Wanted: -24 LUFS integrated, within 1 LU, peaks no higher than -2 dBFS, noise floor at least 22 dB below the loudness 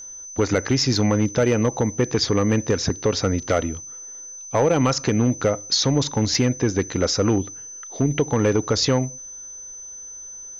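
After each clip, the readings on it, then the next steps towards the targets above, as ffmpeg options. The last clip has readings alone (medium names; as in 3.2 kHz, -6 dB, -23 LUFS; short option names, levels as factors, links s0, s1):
steady tone 6.1 kHz; tone level -35 dBFS; loudness -21.0 LUFS; peak level -10.0 dBFS; loudness target -24.0 LUFS
-> -af "bandreject=f=6100:w=30"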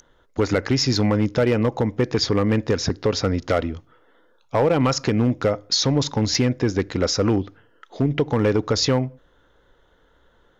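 steady tone not found; loudness -21.5 LUFS; peak level -10.0 dBFS; loudness target -24.0 LUFS
-> -af "volume=0.75"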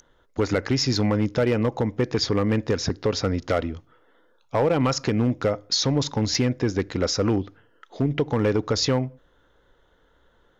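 loudness -24.0 LUFS; peak level -12.5 dBFS; noise floor -62 dBFS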